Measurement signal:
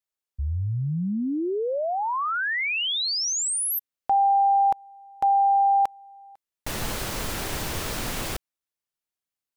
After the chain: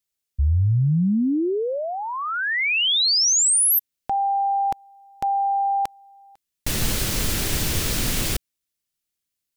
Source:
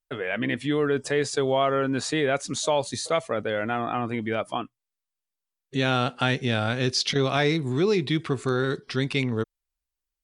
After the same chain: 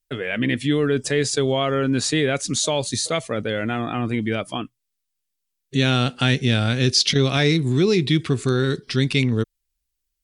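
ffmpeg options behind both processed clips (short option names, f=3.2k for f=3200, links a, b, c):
-af "equalizer=f=880:w=0.61:g=-11,volume=8.5dB"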